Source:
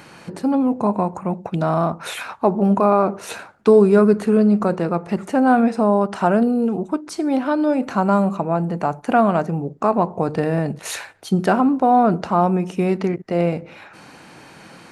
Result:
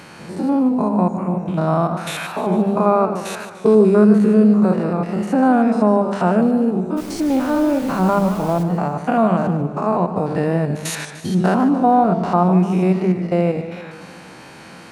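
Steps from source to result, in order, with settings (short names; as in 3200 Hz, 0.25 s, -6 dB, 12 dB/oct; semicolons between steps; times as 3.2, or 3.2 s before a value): stepped spectrum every 0.1 s; in parallel at -1 dB: compressor, threshold -23 dBFS, peak gain reduction 13 dB; 6.96–8.62 on the sum: added noise pink -37 dBFS; on a send at -3 dB: Butterworth band-pass 200 Hz, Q 5.9 + reverb RT60 0.35 s, pre-delay 7 ms; on the sum: warbling echo 0.149 s, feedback 57%, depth 155 cents, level -12 dB; gain -1 dB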